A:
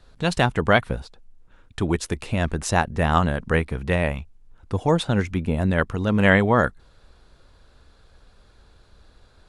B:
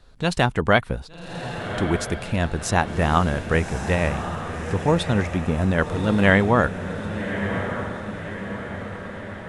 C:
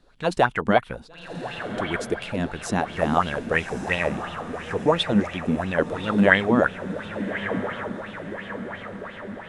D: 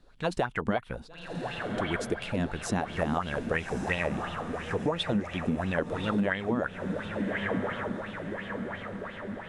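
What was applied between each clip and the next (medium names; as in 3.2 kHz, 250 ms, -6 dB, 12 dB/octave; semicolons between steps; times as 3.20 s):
echo that smears into a reverb 1167 ms, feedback 57%, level -8.5 dB
peaking EQ 67 Hz -7 dB 1.7 oct; sweeping bell 2.9 Hz 210–3300 Hz +15 dB; trim -6.5 dB
bass shelf 150 Hz +4.5 dB; compression 12:1, threshold -21 dBFS, peak gain reduction 12.5 dB; trim -3 dB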